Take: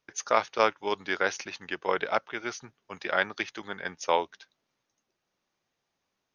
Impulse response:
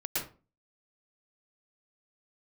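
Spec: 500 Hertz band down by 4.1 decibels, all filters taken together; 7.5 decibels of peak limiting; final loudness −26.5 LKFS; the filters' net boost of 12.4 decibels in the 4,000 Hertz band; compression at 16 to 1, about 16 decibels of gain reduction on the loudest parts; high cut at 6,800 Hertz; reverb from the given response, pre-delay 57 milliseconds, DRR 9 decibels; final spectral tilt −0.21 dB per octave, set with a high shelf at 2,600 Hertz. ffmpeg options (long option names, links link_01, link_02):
-filter_complex "[0:a]lowpass=6800,equalizer=frequency=500:width_type=o:gain=-5.5,highshelf=frequency=2600:gain=9,equalizer=frequency=4000:width_type=o:gain=9,acompressor=threshold=-31dB:ratio=16,alimiter=limit=-21.5dB:level=0:latency=1,asplit=2[link_01][link_02];[1:a]atrim=start_sample=2205,adelay=57[link_03];[link_02][link_03]afir=irnorm=-1:irlink=0,volume=-14.5dB[link_04];[link_01][link_04]amix=inputs=2:normalize=0,volume=11.5dB"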